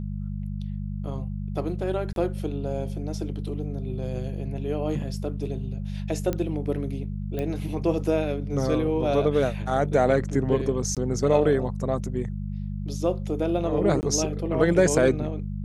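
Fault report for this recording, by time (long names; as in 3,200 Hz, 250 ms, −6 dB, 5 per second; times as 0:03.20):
mains hum 50 Hz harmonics 4 −31 dBFS
0:02.13–0:02.16: drop-out 32 ms
0:06.33: click −14 dBFS
0:07.39: click −18 dBFS
0:10.95–0:10.97: drop-out 17 ms
0:14.01–0:14.03: drop-out 19 ms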